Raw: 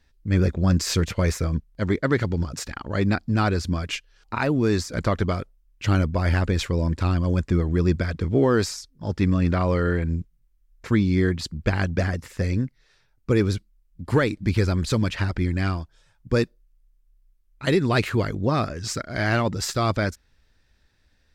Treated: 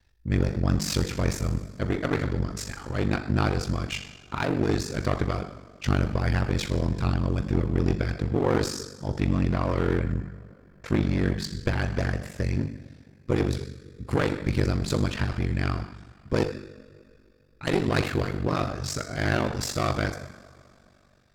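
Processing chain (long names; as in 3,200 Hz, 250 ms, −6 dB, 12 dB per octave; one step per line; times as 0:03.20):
coupled-rooms reverb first 0.8 s, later 3.1 s, from −18 dB, DRR 5 dB
asymmetric clip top −26 dBFS
ring modulation 24 Hz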